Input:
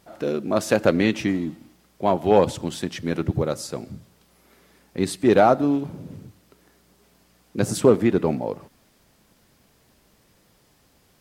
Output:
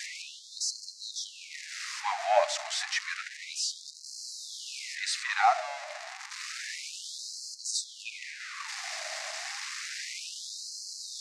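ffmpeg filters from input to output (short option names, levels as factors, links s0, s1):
-af "aeval=exprs='val(0)+0.5*0.0501*sgn(val(0))':c=same,highpass=410,equalizer=f=570:t=q:w=4:g=5,equalizer=f=950:t=q:w=4:g=-9,equalizer=f=1400:t=q:w=4:g=-4,equalizer=f=2000:t=q:w=4:g=4,equalizer=f=3200:t=q:w=4:g=-7,lowpass=f=7000:w=0.5412,lowpass=f=7000:w=1.3066,afftfilt=real='re*gte(b*sr/1024,580*pow(4100/580,0.5+0.5*sin(2*PI*0.3*pts/sr)))':imag='im*gte(b*sr/1024,580*pow(4100/580,0.5+0.5*sin(2*PI*0.3*pts/sr)))':win_size=1024:overlap=0.75"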